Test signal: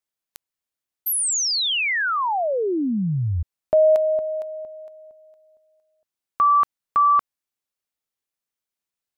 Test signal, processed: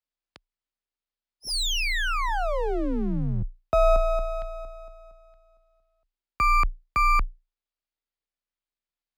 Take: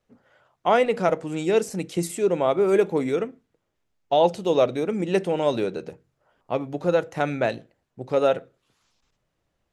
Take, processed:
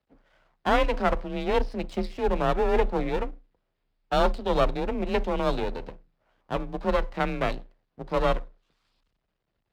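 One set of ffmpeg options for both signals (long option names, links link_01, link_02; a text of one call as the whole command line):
ffmpeg -i in.wav -af "aresample=11025,aresample=44100,aeval=exprs='max(val(0),0)':channel_layout=same,afreqshift=29" out.wav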